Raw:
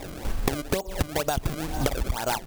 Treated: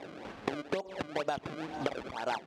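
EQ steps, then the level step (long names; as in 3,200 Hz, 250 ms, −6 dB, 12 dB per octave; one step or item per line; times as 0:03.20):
band-pass filter 230–3,300 Hz
−5.5 dB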